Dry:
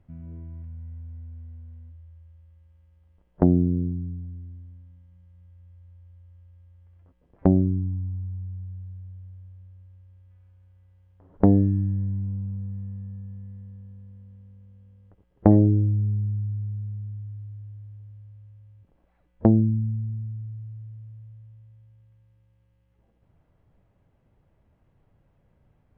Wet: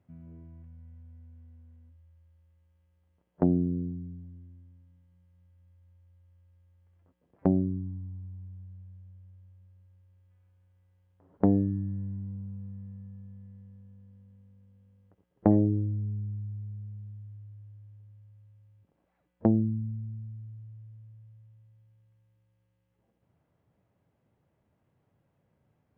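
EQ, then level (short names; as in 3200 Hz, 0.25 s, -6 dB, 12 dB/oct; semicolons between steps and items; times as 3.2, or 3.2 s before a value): HPF 110 Hz; -5.0 dB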